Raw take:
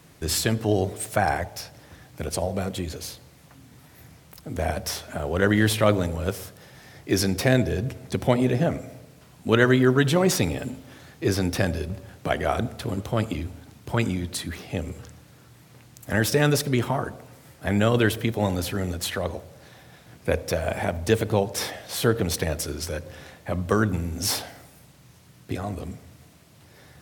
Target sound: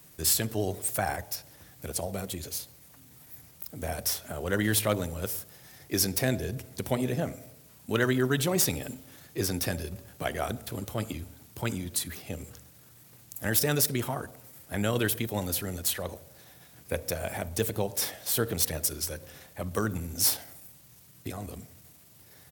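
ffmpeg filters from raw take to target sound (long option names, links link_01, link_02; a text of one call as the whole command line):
ffmpeg -i in.wav -af "aemphasis=mode=production:type=50fm,atempo=1.2,volume=6.5dB,asoftclip=hard,volume=-6.5dB,volume=-7dB" out.wav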